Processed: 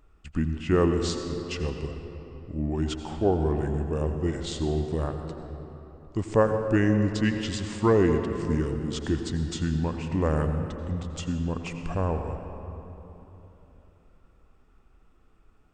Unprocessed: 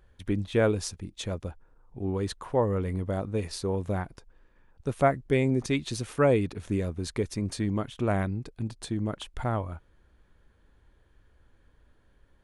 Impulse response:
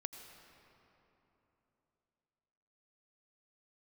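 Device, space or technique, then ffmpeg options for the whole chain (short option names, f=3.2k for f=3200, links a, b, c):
slowed and reverbed: -filter_complex "[0:a]asetrate=34839,aresample=44100[a];[1:a]atrim=start_sample=2205[b];[a][b]afir=irnorm=-1:irlink=0,volume=4.5dB"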